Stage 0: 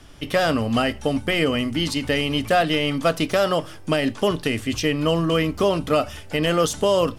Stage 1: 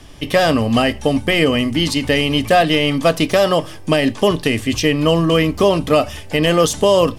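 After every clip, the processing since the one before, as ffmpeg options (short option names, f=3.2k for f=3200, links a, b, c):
-af "bandreject=f=1.4k:w=5.9,volume=6dB"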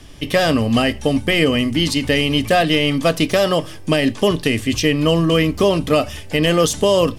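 -af "equalizer=f=860:t=o:w=1.3:g=-4"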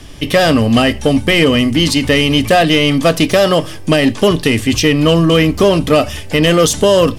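-af "acontrast=63"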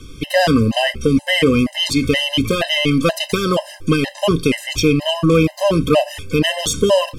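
-af "afftfilt=real='re*gt(sin(2*PI*2.1*pts/sr)*(1-2*mod(floor(b*sr/1024/530),2)),0)':imag='im*gt(sin(2*PI*2.1*pts/sr)*(1-2*mod(floor(b*sr/1024/530),2)),0)':win_size=1024:overlap=0.75,volume=-1.5dB"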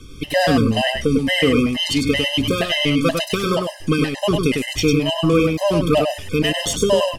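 -af "aecho=1:1:101:0.596,volume=-3dB"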